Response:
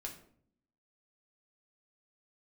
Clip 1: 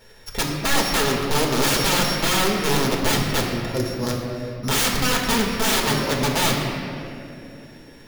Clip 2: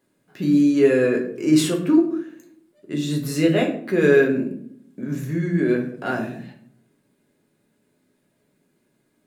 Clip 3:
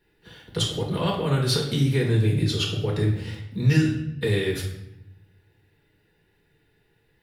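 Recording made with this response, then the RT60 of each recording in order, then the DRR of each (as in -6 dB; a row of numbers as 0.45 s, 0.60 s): 2; 2.7 s, 0.60 s, 0.80 s; -2.0 dB, 0.0 dB, -3.5 dB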